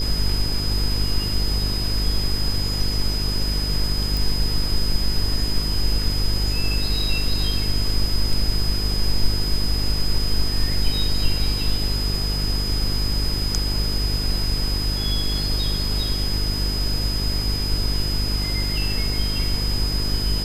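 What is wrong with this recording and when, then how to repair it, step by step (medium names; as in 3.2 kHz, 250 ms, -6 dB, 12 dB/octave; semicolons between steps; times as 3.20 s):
buzz 50 Hz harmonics 9 -25 dBFS
whine 5 kHz -26 dBFS
4.17 s: pop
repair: de-click; band-stop 5 kHz, Q 30; de-hum 50 Hz, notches 9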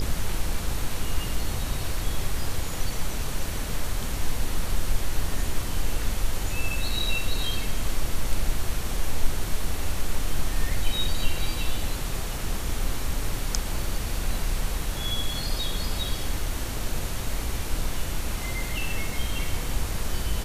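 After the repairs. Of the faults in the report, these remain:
nothing left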